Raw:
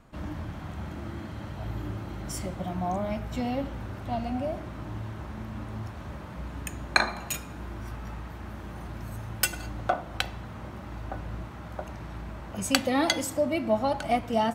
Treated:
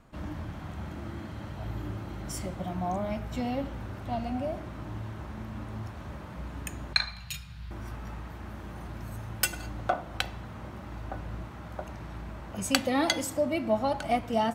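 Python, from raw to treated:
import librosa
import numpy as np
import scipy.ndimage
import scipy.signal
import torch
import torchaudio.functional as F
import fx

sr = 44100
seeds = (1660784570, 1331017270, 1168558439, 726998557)

y = fx.curve_eq(x, sr, hz=(150.0, 310.0, 4500.0, 6400.0), db=(0, -26, 5, -7), at=(6.93, 7.71))
y = F.gain(torch.from_numpy(y), -1.5).numpy()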